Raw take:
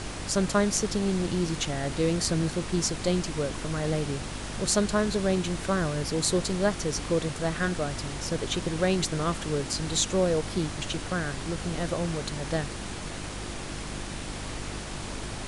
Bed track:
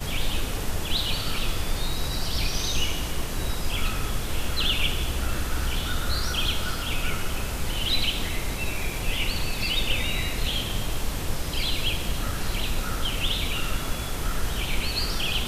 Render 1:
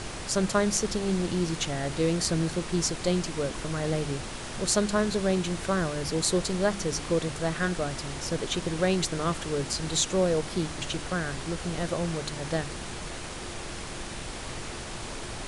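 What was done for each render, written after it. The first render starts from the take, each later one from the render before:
hum removal 50 Hz, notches 6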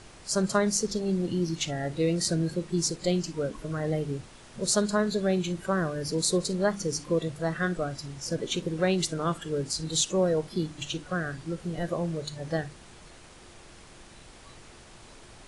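noise reduction from a noise print 13 dB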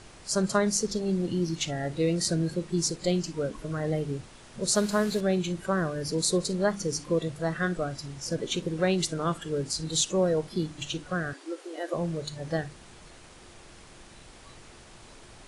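0:04.75–0:05.21: linear delta modulator 64 kbit/s, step −34.5 dBFS
0:11.33–0:11.94: linear-phase brick-wall high-pass 270 Hz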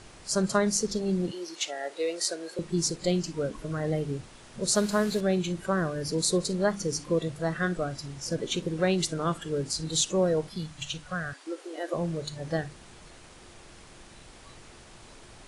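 0:01.31–0:02.59: high-pass filter 420 Hz 24 dB per octave
0:10.50–0:11.47: parametric band 340 Hz −14.5 dB 0.95 octaves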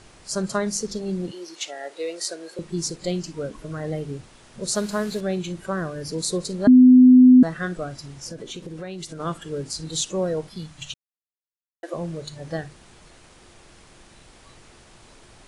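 0:06.67–0:07.43: beep over 253 Hz −7 dBFS
0:08.27–0:09.20: downward compressor 4 to 1, threshold −32 dBFS
0:10.94–0:11.83: silence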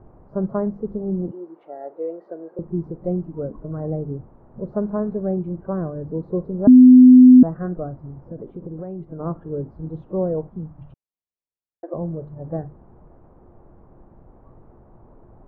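low-pass filter 1,000 Hz 24 dB per octave
low-shelf EQ 390 Hz +4.5 dB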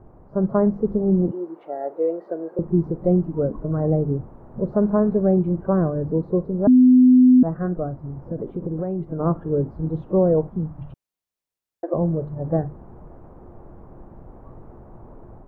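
automatic gain control gain up to 6 dB
brickwall limiter −8.5 dBFS, peak gain reduction 7 dB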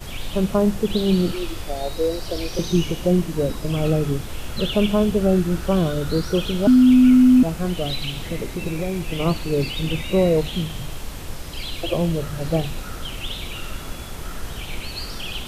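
mix in bed track −4 dB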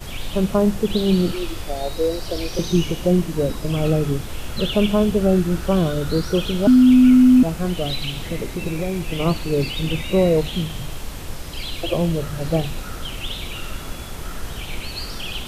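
level +1 dB

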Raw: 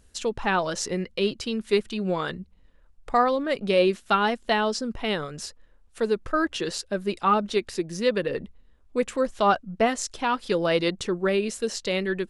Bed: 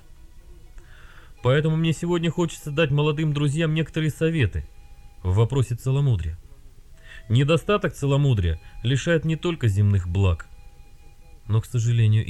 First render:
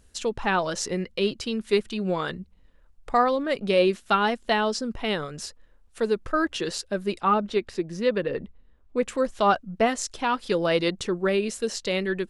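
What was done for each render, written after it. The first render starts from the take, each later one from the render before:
0:07.20–0:09.05: low-pass filter 2,800 Hz 6 dB per octave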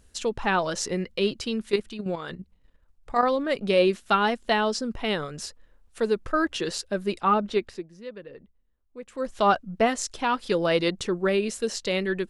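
0:01.69–0:03.23: output level in coarse steps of 9 dB
0:07.59–0:09.39: duck −15.5 dB, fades 0.30 s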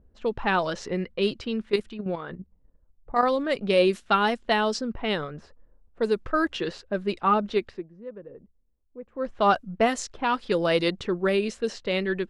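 low-pass that shuts in the quiet parts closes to 610 Hz, open at −19 dBFS
high-shelf EQ 9,900 Hz +6.5 dB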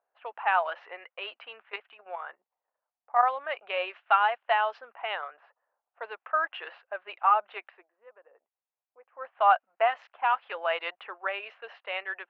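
elliptic band-pass filter 720–2,800 Hz, stop band 60 dB
tilt shelving filter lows +4 dB, about 1,400 Hz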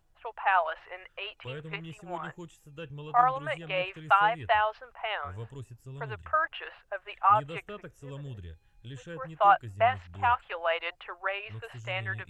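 mix in bed −21.5 dB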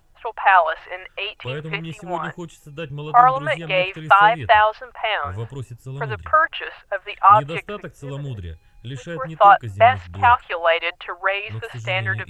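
level +11 dB
brickwall limiter −1 dBFS, peak gain reduction 3 dB

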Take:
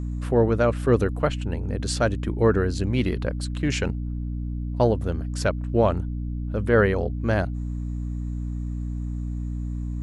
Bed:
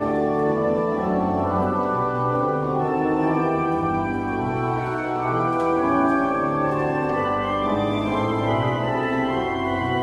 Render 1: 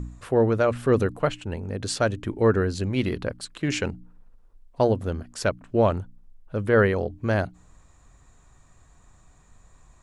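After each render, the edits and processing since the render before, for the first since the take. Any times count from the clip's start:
hum removal 60 Hz, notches 5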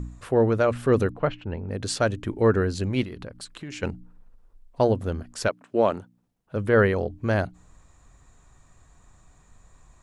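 0:01.10–0:01.71: high-frequency loss of the air 260 metres
0:03.03–0:03.83: downward compressor 5 to 1, threshold −34 dBFS
0:05.47–0:06.55: high-pass filter 360 Hz → 100 Hz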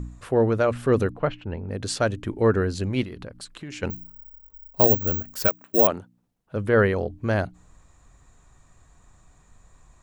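0:03.90–0:05.87: bad sample-rate conversion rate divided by 2×, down none, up zero stuff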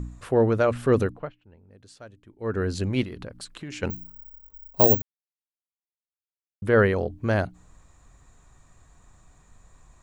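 0:01.00–0:02.72: duck −22 dB, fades 0.33 s
0:05.02–0:06.62: silence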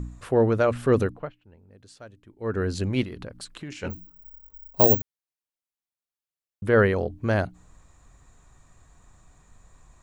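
0:03.73–0:04.24: micro pitch shift up and down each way 48 cents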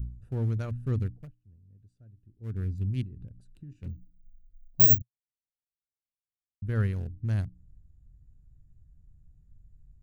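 adaptive Wiener filter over 41 samples
drawn EQ curve 120 Hz 0 dB, 550 Hz −23 dB, 4,000 Hz −11 dB, 12,000 Hz +2 dB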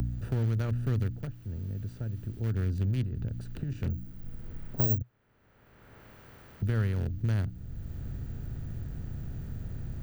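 compressor on every frequency bin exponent 0.6
multiband upward and downward compressor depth 70%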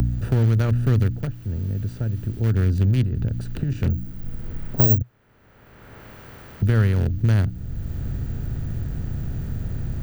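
level +10 dB

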